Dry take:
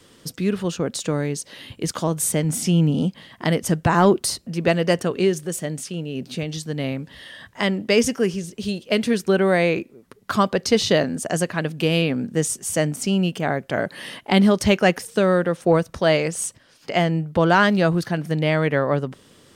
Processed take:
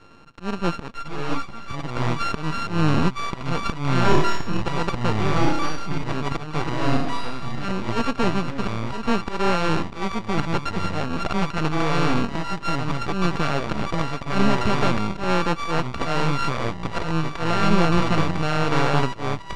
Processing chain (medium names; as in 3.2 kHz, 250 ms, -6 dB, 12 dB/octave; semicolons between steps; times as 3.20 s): sorted samples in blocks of 32 samples; 5.17–5.98 s: high-pass 220 Hz 24 dB/octave; slow attack 289 ms; peak limiter -16 dBFS, peak gain reduction 12 dB; half-wave rectifier; 4.02–4.62 s: flutter echo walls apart 4.7 m, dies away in 0.66 s; ever faster or slower copies 546 ms, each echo -3 st, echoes 2; distance through air 130 m; 0.92–1.70 s: three-phase chorus; trim +7 dB